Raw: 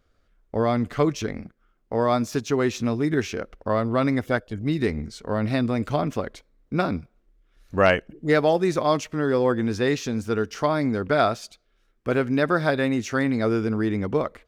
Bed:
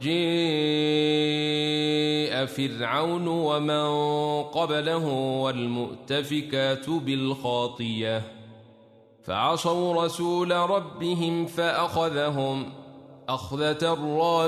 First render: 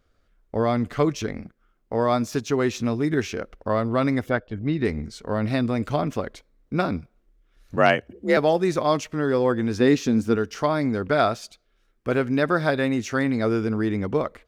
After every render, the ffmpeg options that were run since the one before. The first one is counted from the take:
-filter_complex "[0:a]asplit=3[a][b][c];[a]afade=t=out:st=4.29:d=0.02[d];[b]lowpass=3.3k,afade=t=in:st=4.29:d=0.02,afade=t=out:st=4.84:d=0.02[e];[c]afade=t=in:st=4.84:d=0.02[f];[d][e][f]amix=inputs=3:normalize=0,asettb=1/sr,asplit=3[g][h][i];[g]atrim=end=7.764[j];[h]atrim=start=7.76:end=8.37,asetpts=PTS-STARTPTS,afade=t=in:d=0.004:c=qsin,afade=t=out:st=0.606:d=0.004:c=qsin,afreqshift=48[k];[i]atrim=start=8.366[l];[j][k]acrossfade=d=0.004:c1=hsin:c2=qsin[m];[m][l]acrossfade=d=0.004:c1=qsin:c2=hsin,asettb=1/sr,asplit=3[n][o][p];[n]atrim=end=9.804[q];[o]atrim=start=9.8:end=10.36,asetpts=PTS-STARTPTS,afade=t=in:d=0.004:c=qsin,afade=t=out:st=0.556:d=0.004:c=qsin,equalizer=f=260:w=1.2:g=8[r];[p]atrim=start=10.356[s];[q][r]acrossfade=d=0.004:c1=hsin:c2=qsin[t];[t][s]acrossfade=d=0.004:c1=qsin:c2=hsin"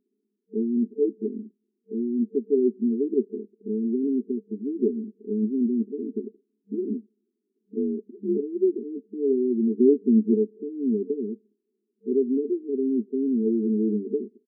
-af "afftfilt=real='re*between(b*sr/4096,200,450)':imag='im*between(b*sr/4096,200,450)':win_size=4096:overlap=0.75,aecho=1:1:4.9:0.48"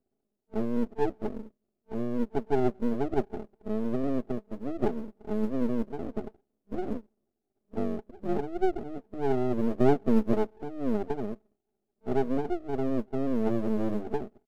-filter_complex "[0:a]acrossover=split=130[a][b];[a]acrusher=bits=3:mode=log:mix=0:aa=0.000001[c];[c][b]amix=inputs=2:normalize=0,aeval=exprs='max(val(0),0)':c=same"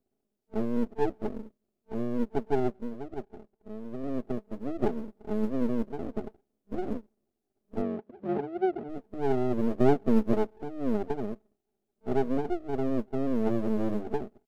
-filter_complex "[0:a]asplit=3[a][b][c];[a]afade=t=out:st=7.81:d=0.02[d];[b]highpass=120,lowpass=3.1k,afade=t=in:st=7.81:d=0.02,afade=t=out:st=8.88:d=0.02[e];[c]afade=t=in:st=8.88:d=0.02[f];[d][e][f]amix=inputs=3:normalize=0,asplit=3[g][h][i];[g]atrim=end=2.92,asetpts=PTS-STARTPTS,afade=t=out:st=2.5:d=0.42:silence=0.316228[j];[h]atrim=start=2.92:end=3.91,asetpts=PTS-STARTPTS,volume=-10dB[k];[i]atrim=start=3.91,asetpts=PTS-STARTPTS,afade=t=in:d=0.42:silence=0.316228[l];[j][k][l]concat=n=3:v=0:a=1"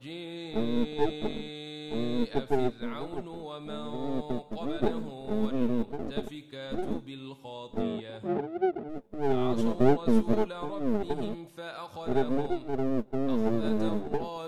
-filter_complex "[1:a]volume=-16dB[a];[0:a][a]amix=inputs=2:normalize=0"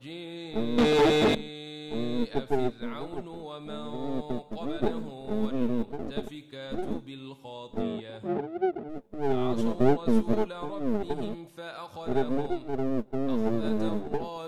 -filter_complex "[0:a]asettb=1/sr,asplit=3[a][b][c];[a]atrim=end=0.784[d];[b]atrim=start=0.78:end=1.35,asetpts=PTS-STARTPTS,afade=t=in:d=0.004:c=qsin,afade=t=out:st=0.566:d=0.004:c=qsin,asplit=2[e][f];[f]highpass=f=720:p=1,volume=36dB,asoftclip=type=tanh:threshold=-12.5dB[g];[e][g]amix=inputs=2:normalize=0,lowpass=f=1.6k:p=1,volume=-6dB[h];[c]atrim=start=1.346[i];[d][h]acrossfade=d=0.004:c1=hsin:c2=qsin[j];[j][i]acrossfade=d=0.004:c1=qsin:c2=hsin"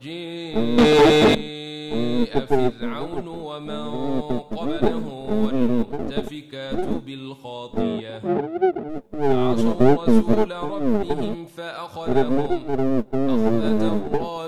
-af "volume=8dB,alimiter=limit=-2dB:level=0:latency=1"

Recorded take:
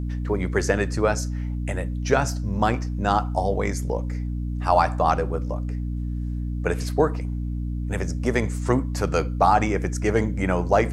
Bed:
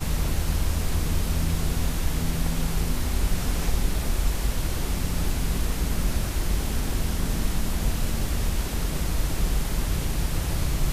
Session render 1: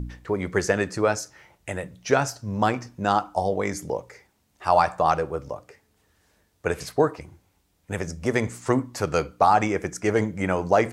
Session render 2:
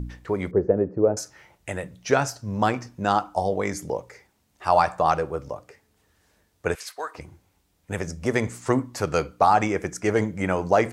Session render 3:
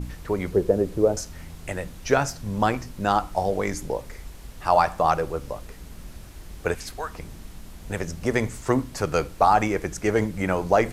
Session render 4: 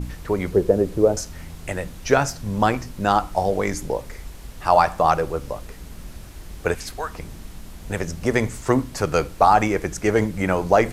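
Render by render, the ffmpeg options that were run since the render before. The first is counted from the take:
-af "bandreject=f=60:t=h:w=4,bandreject=f=120:t=h:w=4,bandreject=f=180:t=h:w=4,bandreject=f=240:t=h:w=4,bandreject=f=300:t=h:w=4"
-filter_complex "[0:a]asettb=1/sr,asplit=3[a][b][c];[a]atrim=end=0.514[d];[b]atrim=start=0.51:end=1.17,asetpts=PTS-STARTPTS,afade=t=in:d=0.004:c=qsin,afade=t=out:st=0.656:d=0.004:c=qsin,lowpass=f=480:t=q:w=1.5[e];[c]atrim=start=1.166[f];[d][e]acrossfade=d=0.004:c1=hsin:c2=qsin[g];[g][f]acrossfade=d=0.004:c1=qsin:c2=hsin,asettb=1/sr,asplit=3[h][i][j];[h]atrim=end=6.754[k];[i]atrim=start=6.75:end=7.15,asetpts=PTS-STARTPTS,afade=t=in:d=0.004:c=qsin,afade=t=out:st=0.396:d=0.004:c=qsin,highpass=1.2k[l];[j]atrim=start=7.146[m];[k][l]acrossfade=d=0.004:c1=hsin:c2=qsin[n];[n][m]acrossfade=d=0.004:c1=qsin:c2=hsin"
-filter_complex "[1:a]volume=-16dB[a];[0:a][a]amix=inputs=2:normalize=0"
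-af "volume=3dB"

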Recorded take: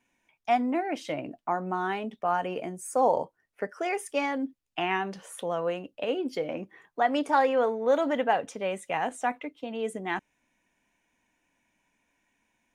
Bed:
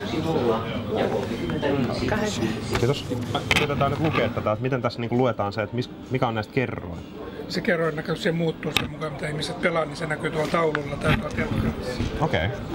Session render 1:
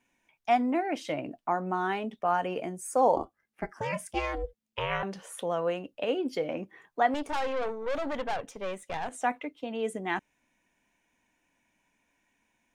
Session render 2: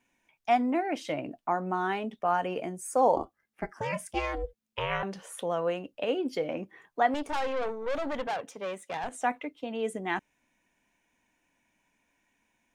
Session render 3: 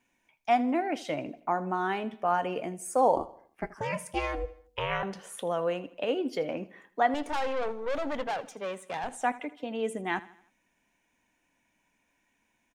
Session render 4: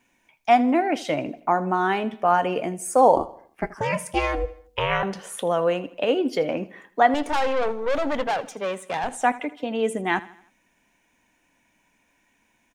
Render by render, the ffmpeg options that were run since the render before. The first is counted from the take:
-filter_complex "[0:a]asettb=1/sr,asplit=3[a][b][c];[a]atrim=end=3.164[d];[b]atrim=start=3.16:end=5.03,asetpts=PTS-STARTPTS,afade=t=in:d=0.004:c=qsin,afade=t=out:st=1.866:d=0.004:c=qsin,aeval=exprs='val(0)*sin(2*PI*220*n/s)':c=same[e];[c]atrim=start=5.026[f];[d][e]acrossfade=d=0.004:c1=hsin:c2=qsin[g];[g][f]acrossfade=d=0.004:c1=qsin:c2=hsin,asettb=1/sr,asplit=3[h][i][j];[h]atrim=end=7.144[k];[i]atrim=start=7.14:end=9.13,asetpts=PTS-STARTPTS,afade=t=in:d=0.004:c=qsin,afade=t=out:st=1.986:d=0.004:c=qsin,aeval=exprs='(tanh(25.1*val(0)+0.75)-tanh(0.75))/25.1':c=same[l];[j]atrim=start=9.126[m];[k][l]acrossfade=d=0.004:c1=hsin:c2=qsin[n];[n][m]acrossfade=d=0.004:c1=qsin:c2=hsin"
-filter_complex "[0:a]asettb=1/sr,asplit=3[a][b][c];[a]atrim=end=8.274[d];[b]atrim=start=8.27:end=9.04,asetpts=PTS-STARTPTS,afade=t=in:d=0.004:c=qsin,afade=t=out:st=0.766:d=0.004:c=qsin,highpass=170[e];[c]atrim=start=9.036[f];[d][e]acrossfade=d=0.004:c1=hsin:c2=qsin[g];[g][f]acrossfade=d=0.004:c1=qsin:c2=hsin"
-af "aecho=1:1:80|160|240|320:0.119|0.0547|0.0251|0.0116"
-af "volume=7.5dB"

